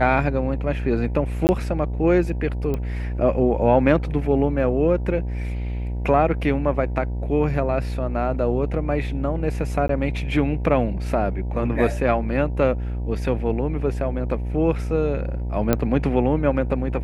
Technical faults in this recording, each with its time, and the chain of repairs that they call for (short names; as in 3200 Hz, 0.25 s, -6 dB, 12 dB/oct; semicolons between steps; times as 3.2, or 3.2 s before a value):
buzz 60 Hz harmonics 16 -26 dBFS
1.47–1.49 gap 19 ms
2.74 pop -15 dBFS
9.88–9.89 gap 13 ms
15.73 pop -5 dBFS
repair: de-click; de-hum 60 Hz, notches 16; interpolate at 1.47, 19 ms; interpolate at 9.88, 13 ms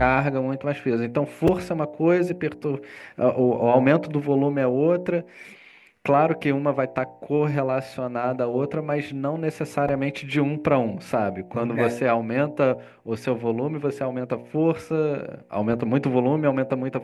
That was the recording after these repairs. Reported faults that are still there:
none